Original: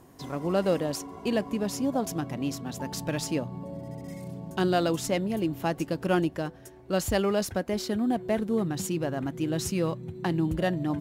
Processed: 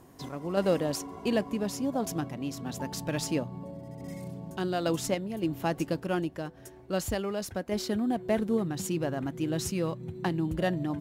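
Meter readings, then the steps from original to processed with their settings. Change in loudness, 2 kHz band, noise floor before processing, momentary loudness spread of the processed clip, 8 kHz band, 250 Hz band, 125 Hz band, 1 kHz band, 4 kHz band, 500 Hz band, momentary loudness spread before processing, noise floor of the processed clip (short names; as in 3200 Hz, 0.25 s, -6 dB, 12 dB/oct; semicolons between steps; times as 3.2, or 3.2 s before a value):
-2.5 dB, -2.5 dB, -50 dBFS, 11 LU, -1.5 dB, -2.5 dB, -2.5 dB, -3.0 dB, -2.0 dB, -2.5 dB, 10 LU, -51 dBFS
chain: random-step tremolo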